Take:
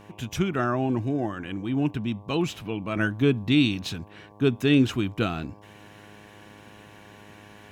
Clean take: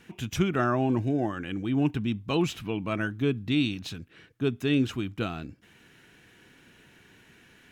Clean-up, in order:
hum removal 103.5 Hz, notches 11
level 0 dB, from 0:02.96 −5 dB

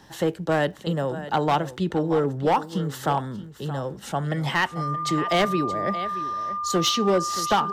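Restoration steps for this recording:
clipped peaks rebuilt −14.5 dBFS
click removal
notch filter 1,200 Hz, Q 30
echo removal 625 ms −14 dB

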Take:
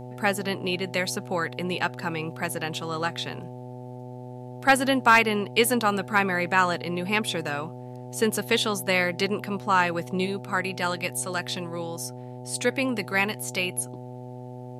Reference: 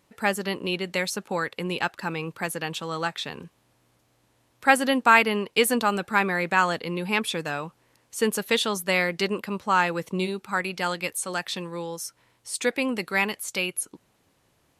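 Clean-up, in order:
clipped peaks rebuilt −7.5 dBFS
hum removal 124.6 Hz, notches 7

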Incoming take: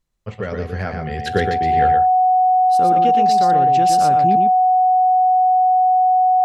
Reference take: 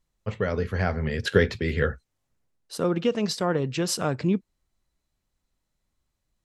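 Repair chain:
notch filter 740 Hz, Q 30
echo removal 118 ms −5 dB

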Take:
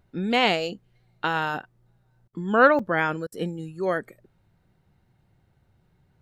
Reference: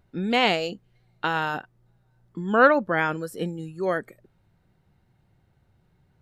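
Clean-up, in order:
repair the gap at 0:02.79, 3.8 ms
repair the gap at 0:02.28/0:03.27, 50 ms

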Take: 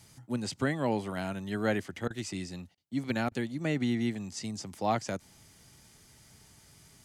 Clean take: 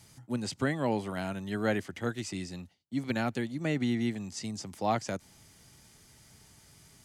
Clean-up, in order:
repair the gap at 0:02.08/0:02.75/0:03.29, 23 ms

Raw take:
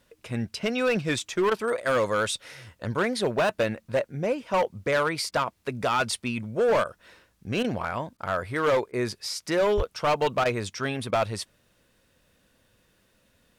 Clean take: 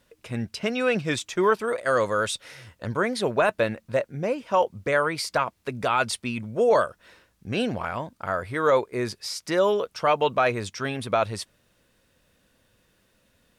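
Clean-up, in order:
clipped peaks rebuilt −18.5 dBFS
high-pass at the plosives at 0:09.76
repair the gap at 0:01.50/0:05.31/0:06.84/0:07.63/0:08.17/0:08.92/0:10.44/0:11.11, 12 ms

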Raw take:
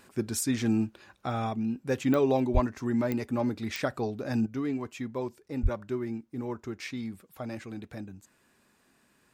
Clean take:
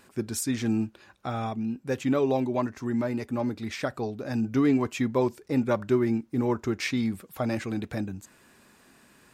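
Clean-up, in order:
click removal
0:02.53–0:02.65: high-pass filter 140 Hz 24 dB per octave
0:04.46: level correction +9 dB
0:05.62–0:05.74: high-pass filter 140 Hz 24 dB per octave

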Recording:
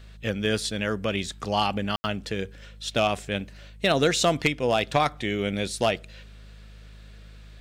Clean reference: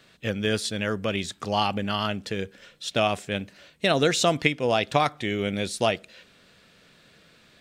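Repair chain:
clipped peaks rebuilt −12 dBFS
hum removal 52.1 Hz, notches 4
ambience match 0:01.96–0:02.04

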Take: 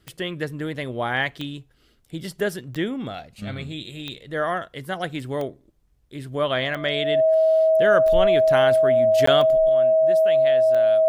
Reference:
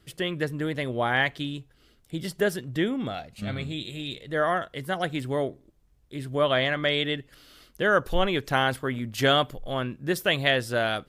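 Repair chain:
click removal
notch filter 640 Hz, Q 30
repair the gap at 0:09.26, 14 ms
level 0 dB, from 0:09.69 +10.5 dB

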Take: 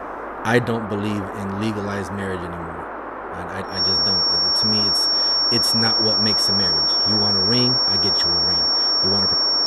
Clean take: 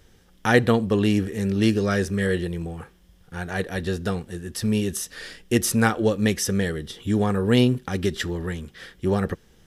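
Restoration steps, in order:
hum removal 51.3 Hz, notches 4
notch filter 5,500 Hz, Q 30
noise reduction from a noise print 24 dB
level 0 dB, from 0:00.68 +4 dB

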